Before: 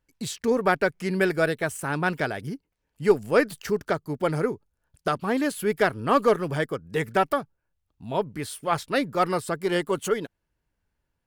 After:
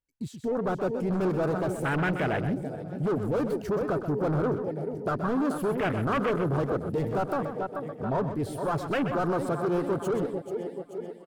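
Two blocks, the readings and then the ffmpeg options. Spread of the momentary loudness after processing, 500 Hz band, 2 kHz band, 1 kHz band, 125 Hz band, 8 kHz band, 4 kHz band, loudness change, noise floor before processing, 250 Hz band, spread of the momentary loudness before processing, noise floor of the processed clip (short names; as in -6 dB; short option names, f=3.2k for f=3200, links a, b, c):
7 LU, -3.0 dB, -7.0 dB, -4.0 dB, +2.5 dB, -11.0 dB, -9.5 dB, -3.0 dB, -79 dBFS, 0.0 dB, 9 LU, -45 dBFS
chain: -filter_complex "[0:a]asplit=2[a][b];[b]aecho=0:1:434|868|1302|1736|2170|2604:0.168|0.099|0.0584|0.0345|0.0203|0.012[c];[a][c]amix=inputs=2:normalize=0,asoftclip=type=hard:threshold=-22.5dB,dynaudnorm=f=150:g=11:m=8.5dB,asoftclip=type=tanh:threshold=-24dB,afwtdn=0.0355,asplit=2[d][e];[e]aecho=0:1:127:0.335[f];[d][f]amix=inputs=2:normalize=0"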